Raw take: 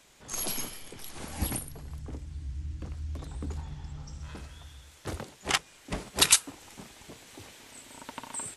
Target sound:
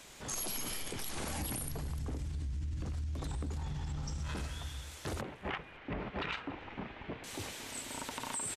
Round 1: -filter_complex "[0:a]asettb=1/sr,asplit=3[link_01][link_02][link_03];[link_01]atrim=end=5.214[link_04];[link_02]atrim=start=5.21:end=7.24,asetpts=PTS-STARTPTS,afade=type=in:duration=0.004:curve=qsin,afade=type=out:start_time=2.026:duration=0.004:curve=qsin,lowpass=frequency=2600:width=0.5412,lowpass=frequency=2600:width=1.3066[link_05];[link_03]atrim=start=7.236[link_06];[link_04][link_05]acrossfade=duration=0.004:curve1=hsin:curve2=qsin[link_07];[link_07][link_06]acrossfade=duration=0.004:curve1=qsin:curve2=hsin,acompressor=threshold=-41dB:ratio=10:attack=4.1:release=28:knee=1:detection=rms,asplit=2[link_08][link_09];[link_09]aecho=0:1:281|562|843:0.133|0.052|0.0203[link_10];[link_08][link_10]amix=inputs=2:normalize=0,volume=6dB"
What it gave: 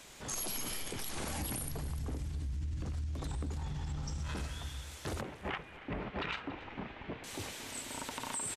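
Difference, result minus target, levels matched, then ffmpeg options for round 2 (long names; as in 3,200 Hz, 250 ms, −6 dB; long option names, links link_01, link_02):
echo-to-direct +6.5 dB
-filter_complex "[0:a]asettb=1/sr,asplit=3[link_01][link_02][link_03];[link_01]atrim=end=5.214[link_04];[link_02]atrim=start=5.21:end=7.24,asetpts=PTS-STARTPTS,afade=type=in:duration=0.004:curve=qsin,afade=type=out:start_time=2.026:duration=0.004:curve=qsin,lowpass=frequency=2600:width=0.5412,lowpass=frequency=2600:width=1.3066[link_05];[link_03]atrim=start=7.236[link_06];[link_04][link_05]acrossfade=duration=0.004:curve1=hsin:curve2=qsin[link_07];[link_07][link_06]acrossfade=duration=0.004:curve1=qsin:curve2=hsin,acompressor=threshold=-41dB:ratio=10:attack=4.1:release=28:knee=1:detection=rms,asplit=2[link_08][link_09];[link_09]aecho=0:1:281|562:0.0631|0.0246[link_10];[link_08][link_10]amix=inputs=2:normalize=0,volume=6dB"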